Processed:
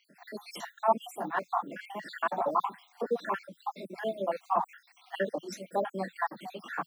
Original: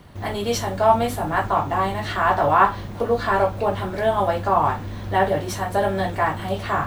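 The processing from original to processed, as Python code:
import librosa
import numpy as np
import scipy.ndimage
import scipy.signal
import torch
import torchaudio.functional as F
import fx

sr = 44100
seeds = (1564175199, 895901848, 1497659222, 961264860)

y = fx.spec_dropout(x, sr, seeds[0], share_pct=63)
y = scipy.signal.sosfilt(scipy.signal.butter(12, 170.0, 'highpass', fs=sr, output='sos'), y)
y = fx.dereverb_blind(y, sr, rt60_s=1.0)
y = y * 10.0 ** (-8.0 / 20.0)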